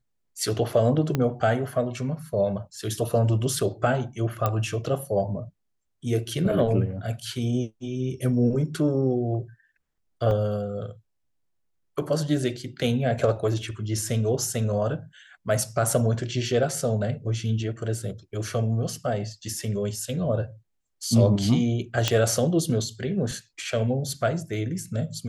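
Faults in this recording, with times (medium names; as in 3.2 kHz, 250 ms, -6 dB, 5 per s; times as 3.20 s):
1.15 s: pop -11 dBFS
4.46 s: pop -11 dBFS
10.31 s: dropout 2 ms
22.08 s: pop -6 dBFS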